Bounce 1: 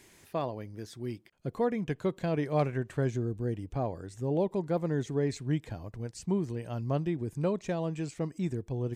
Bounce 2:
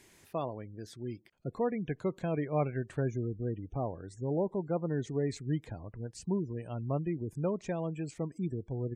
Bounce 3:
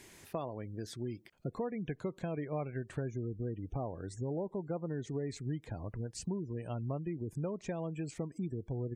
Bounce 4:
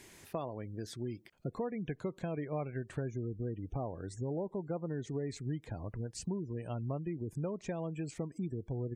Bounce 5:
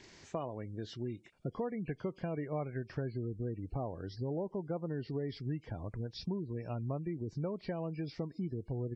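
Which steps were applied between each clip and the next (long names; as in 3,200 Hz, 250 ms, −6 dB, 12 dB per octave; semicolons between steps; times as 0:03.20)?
gate on every frequency bin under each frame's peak −30 dB strong; level −2.5 dB
downward compressor 4 to 1, threshold −40 dBFS, peak gain reduction 13 dB; level +4.5 dB
no processing that can be heard
hearing-aid frequency compression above 2,100 Hz 1.5 to 1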